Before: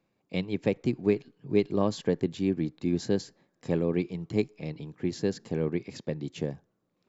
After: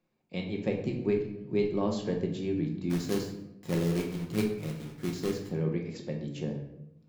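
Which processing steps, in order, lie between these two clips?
2.9–5.49 companded quantiser 4-bit; shoebox room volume 240 m³, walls mixed, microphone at 0.96 m; gain -5.5 dB

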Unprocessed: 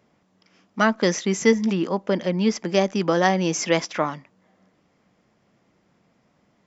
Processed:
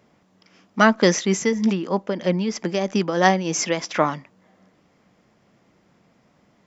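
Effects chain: 1.26–3.87 tremolo triangle 3.1 Hz, depth 70%; gain +4 dB

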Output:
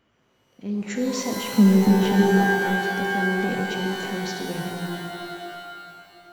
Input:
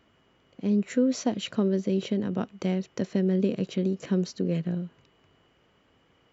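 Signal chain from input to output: 1.53–2.06 small resonant body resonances 200/1600 Hz, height 16 dB; transient shaper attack -2 dB, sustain +8 dB; shimmer reverb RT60 2.4 s, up +12 st, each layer -2 dB, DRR 2 dB; gain -3.5 dB

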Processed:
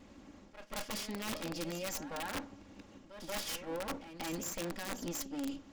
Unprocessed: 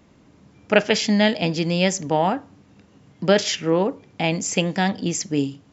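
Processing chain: minimum comb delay 3.6 ms; reverse; compressor 16:1, threshold -35 dBFS, peak gain reduction 21.5 dB; reverse; reverse echo 0.184 s -12 dB; wrapped overs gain 30 dB; gain -1 dB

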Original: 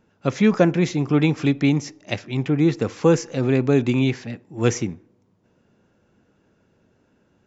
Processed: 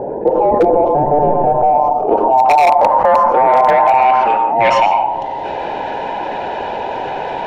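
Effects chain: band inversion scrambler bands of 1000 Hz; 0.88–1.63 tube stage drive 19 dB, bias 0.65; in parallel at -1 dB: limiter -15.5 dBFS, peak gain reduction 11.5 dB; on the sum: bell 350 Hz +8.5 dB 1.8 oct; hard clip -11.5 dBFS, distortion -8 dB; low-pass sweep 470 Hz -> 3200 Hz, 1.36–5.18; on a send at -10 dB: bell 1000 Hz +14 dB 0.38 oct + reverb RT60 0.40 s, pre-delay 91 ms; on the sum: wavefolder -3.5 dBFS; fast leveller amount 70%; gain -1.5 dB

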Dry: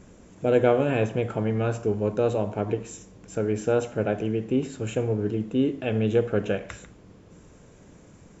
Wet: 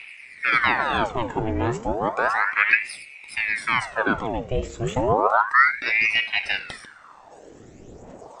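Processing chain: phaser 0.37 Hz, delay 1.7 ms, feedback 59%; ring modulator with a swept carrier 1300 Hz, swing 85%, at 0.32 Hz; gain +4 dB

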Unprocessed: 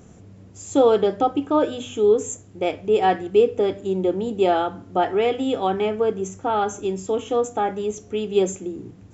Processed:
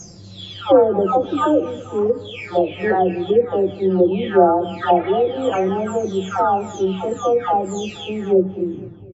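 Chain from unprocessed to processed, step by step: spectral delay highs early, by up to 0.879 s; feedback echo 0.238 s, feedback 53%, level -20 dB; treble ducked by the level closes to 1100 Hz, closed at -18 dBFS; gain +7 dB

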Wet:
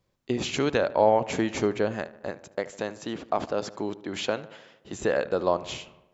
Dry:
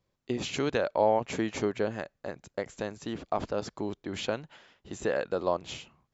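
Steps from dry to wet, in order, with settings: 2.31–4.93 HPF 200 Hz 6 dB/oct; darkening echo 75 ms, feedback 62%, low-pass 3000 Hz, level -17 dB; gain +4 dB

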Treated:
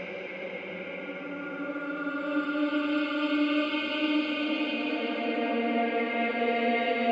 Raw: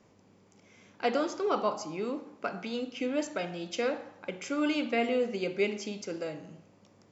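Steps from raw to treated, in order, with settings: LFO low-pass sine 2.2 Hz 830–4300 Hz; echo with dull and thin repeats by turns 0.106 s, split 1500 Hz, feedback 58%, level -8.5 dB; Paulstretch 8.7×, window 0.50 s, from 4.25

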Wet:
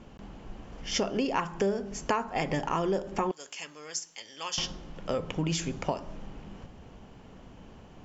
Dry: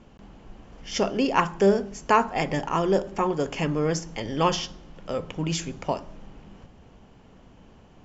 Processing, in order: 3.31–4.58 differentiator; compressor 5:1, threshold -28 dBFS, peak gain reduction 13 dB; gain +2 dB

